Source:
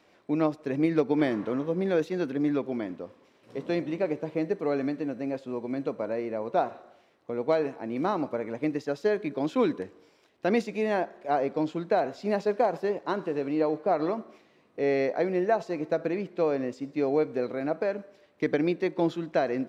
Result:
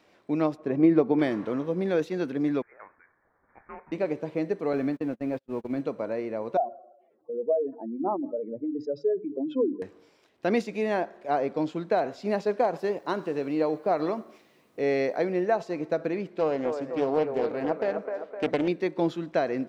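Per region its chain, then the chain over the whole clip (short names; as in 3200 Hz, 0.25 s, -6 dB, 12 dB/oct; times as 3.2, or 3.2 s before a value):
0.57–1.19 LPF 1800 Hz 6 dB/oct + bell 690 Hz +4.5 dB 0.65 oct + small resonant body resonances 210/340/1100 Hz, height 10 dB, ringing for 90 ms
2.62–3.92 HPF 1200 Hz 24 dB/oct + inverted band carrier 2800 Hz + Doppler distortion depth 0.11 ms
4.73–5.81 zero-crossing step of -46 dBFS + gate -34 dBFS, range -39 dB + tone controls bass +3 dB, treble -6 dB
6.57–9.82 spectral contrast raised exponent 2.9 + notches 50/100/150/200/250/300/350 Hz + dynamic EQ 1800 Hz, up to +6 dB, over -50 dBFS, Q 1.5
12.79–15.25 high shelf 4800 Hz +5.5 dB + requantised 12-bit, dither none
16.39–18.68 band-limited delay 0.256 s, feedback 52%, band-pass 840 Hz, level -4 dB + Doppler distortion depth 0.32 ms
whole clip: dry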